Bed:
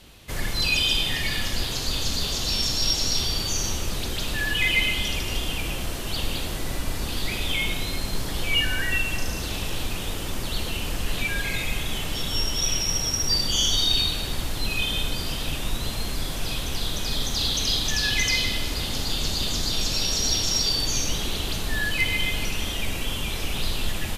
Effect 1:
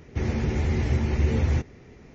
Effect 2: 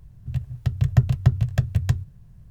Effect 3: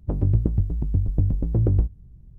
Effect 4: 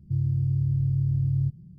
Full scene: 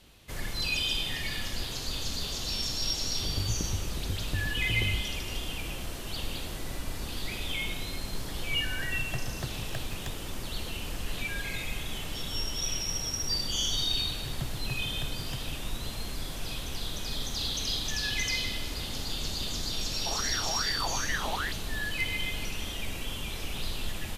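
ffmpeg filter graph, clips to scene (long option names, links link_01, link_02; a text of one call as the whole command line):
ffmpeg -i bed.wav -i cue0.wav -i cue1.wav -i cue2.wav -filter_complex "[2:a]asplit=2[link_01][link_02];[0:a]volume=-7.5dB[link_03];[link_01]highpass=280[link_04];[link_02]highpass=180[link_05];[1:a]aeval=exprs='val(0)*sin(2*PI*1300*n/s+1300*0.45/2.5*sin(2*PI*2.5*n/s))':channel_layout=same[link_06];[3:a]atrim=end=2.38,asetpts=PTS-STARTPTS,volume=-12.5dB,afade=type=in:duration=0.004:curve=hsin,afade=type=out:start_time=2.376:duration=0.004:curve=hsin,adelay=3150[link_07];[link_04]atrim=end=2.5,asetpts=PTS-STARTPTS,volume=-7.5dB,afade=type=in:duration=0.004:curve=hsin,afade=type=out:start_time=2.496:duration=0.004:curve=hsin,adelay=8170[link_08];[link_05]atrim=end=2.5,asetpts=PTS-STARTPTS,volume=-13dB,afade=type=in:duration=0.004:curve=hsin,afade=type=out:start_time=2.496:duration=0.004:curve=hsin,adelay=13440[link_09];[link_06]atrim=end=2.14,asetpts=PTS-STARTPTS,volume=-9.5dB,afade=type=in:duration=0.004:curve=hsin,afade=type=out:start_time=2.136:duration=0.004:curve=hsin,adelay=19900[link_10];[link_03][link_07][link_08][link_09][link_10]amix=inputs=5:normalize=0" out.wav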